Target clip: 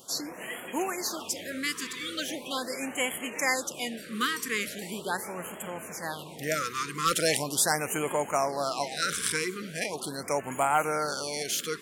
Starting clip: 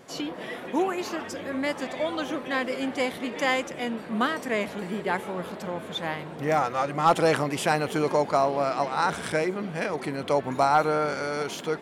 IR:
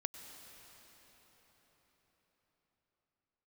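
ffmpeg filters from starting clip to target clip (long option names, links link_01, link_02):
-af "crystalizer=i=7:c=0,afftfilt=real='re*(1-between(b*sr/1024,670*pow(4800/670,0.5+0.5*sin(2*PI*0.4*pts/sr))/1.41,670*pow(4800/670,0.5+0.5*sin(2*PI*0.4*pts/sr))*1.41))':imag='im*(1-between(b*sr/1024,670*pow(4800/670,0.5+0.5*sin(2*PI*0.4*pts/sr))/1.41,670*pow(4800/670,0.5+0.5*sin(2*PI*0.4*pts/sr))*1.41))':win_size=1024:overlap=0.75,volume=-7dB"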